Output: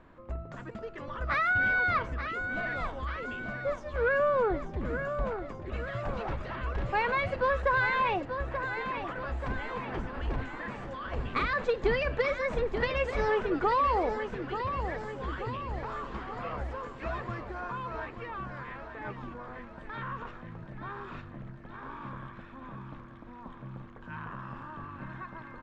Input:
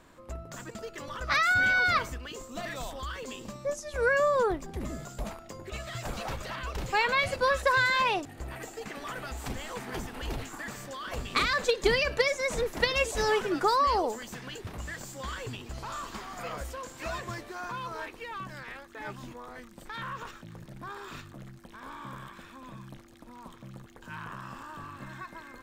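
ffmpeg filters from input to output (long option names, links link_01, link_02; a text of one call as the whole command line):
ffmpeg -i in.wav -filter_complex "[0:a]lowshelf=frequency=110:gain=4.5,asplit=2[link_01][link_02];[link_02]aecho=0:1:883|1766|2649|3532|4415|5298:0.335|0.181|0.0977|0.0527|0.0285|0.0154[link_03];[link_01][link_03]amix=inputs=2:normalize=0,asoftclip=type=tanh:threshold=-17.5dB,lowpass=2100" out.wav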